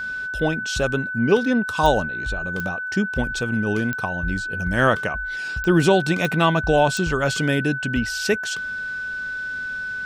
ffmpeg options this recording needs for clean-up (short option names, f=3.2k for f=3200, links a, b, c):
-af "adeclick=t=4,bandreject=f=1.5k:w=30"